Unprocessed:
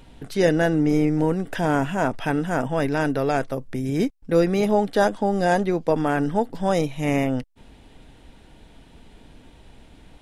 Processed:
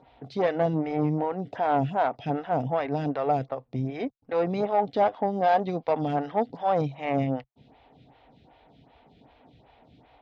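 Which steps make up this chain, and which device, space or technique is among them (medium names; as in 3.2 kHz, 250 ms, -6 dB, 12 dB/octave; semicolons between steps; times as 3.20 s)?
5.44–6.63 s: peaking EQ 4.9 kHz +5.5 dB 2.2 oct; vibe pedal into a guitar amplifier (lamp-driven phase shifter 2.6 Hz; valve stage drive 16 dB, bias 0.4; cabinet simulation 90–4100 Hz, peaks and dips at 130 Hz +5 dB, 200 Hz -5 dB, 350 Hz -6 dB, 740 Hz +7 dB, 1.6 kHz -6 dB, 2.9 kHz -3 dB)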